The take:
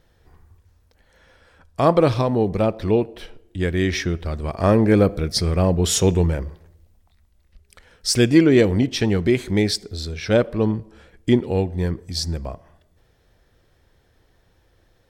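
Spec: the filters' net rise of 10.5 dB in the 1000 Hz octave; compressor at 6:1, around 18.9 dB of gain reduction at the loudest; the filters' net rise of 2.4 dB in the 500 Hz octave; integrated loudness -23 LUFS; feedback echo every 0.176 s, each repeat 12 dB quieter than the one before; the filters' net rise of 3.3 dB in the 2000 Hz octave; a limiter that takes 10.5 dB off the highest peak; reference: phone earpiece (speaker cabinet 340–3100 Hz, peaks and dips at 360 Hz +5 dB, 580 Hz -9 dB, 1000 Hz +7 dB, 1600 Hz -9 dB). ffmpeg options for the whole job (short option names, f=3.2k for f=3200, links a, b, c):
-af "equalizer=f=500:t=o:g=3.5,equalizer=f=1k:t=o:g=8,equalizer=f=2k:t=o:g=5.5,acompressor=threshold=-28dB:ratio=6,alimiter=limit=-24dB:level=0:latency=1,highpass=340,equalizer=f=360:t=q:w=4:g=5,equalizer=f=580:t=q:w=4:g=-9,equalizer=f=1k:t=q:w=4:g=7,equalizer=f=1.6k:t=q:w=4:g=-9,lowpass=f=3.1k:w=0.5412,lowpass=f=3.1k:w=1.3066,aecho=1:1:176|352|528:0.251|0.0628|0.0157,volume=14.5dB"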